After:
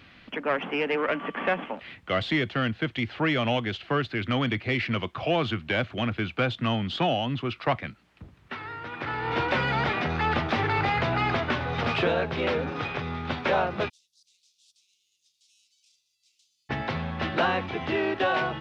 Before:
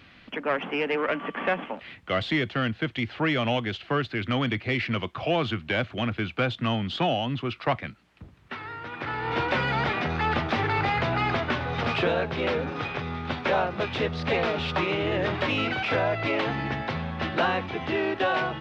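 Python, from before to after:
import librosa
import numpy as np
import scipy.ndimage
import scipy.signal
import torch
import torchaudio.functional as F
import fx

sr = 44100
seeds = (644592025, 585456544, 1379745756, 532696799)

y = fx.cheby2_highpass(x, sr, hz=1800.0, order=4, stop_db=70, at=(13.88, 16.69), fade=0.02)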